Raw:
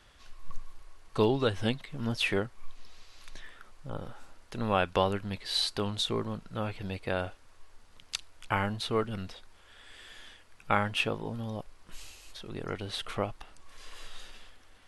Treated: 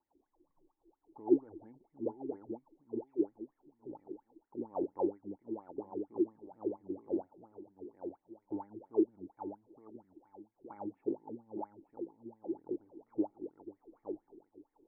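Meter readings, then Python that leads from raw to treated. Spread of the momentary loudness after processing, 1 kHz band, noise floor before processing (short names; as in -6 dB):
20 LU, -14.0 dB, -57 dBFS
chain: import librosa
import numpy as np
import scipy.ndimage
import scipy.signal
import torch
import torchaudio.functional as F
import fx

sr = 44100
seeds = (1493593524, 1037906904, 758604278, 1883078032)

y = fx.echo_feedback(x, sr, ms=867, feedback_pct=27, wet_db=-4.5)
y = fx.wah_lfo(y, sr, hz=4.3, low_hz=330.0, high_hz=2000.0, q=14.0)
y = fx.formant_cascade(y, sr, vowel='u')
y = fx.tilt_eq(y, sr, slope=-3.0)
y = F.gain(torch.from_numpy(y), 15.5).numpy()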